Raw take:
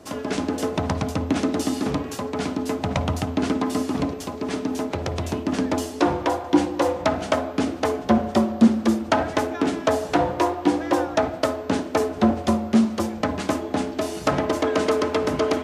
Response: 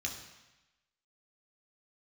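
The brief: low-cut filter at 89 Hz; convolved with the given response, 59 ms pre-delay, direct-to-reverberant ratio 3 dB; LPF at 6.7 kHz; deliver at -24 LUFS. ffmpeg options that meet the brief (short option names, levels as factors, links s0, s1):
-filter_complex "[0:a]highpass=89,lowpass=6700,asplit=2[s0][s1];[1:a]atrim=start_sample=2205,adelay=59[s2];[s1][s2]afir=irnorm=-1:irlink=0,volume=0.562[s3];[s0][s3]amix=inputs=2:normalize=0,volume=0.75"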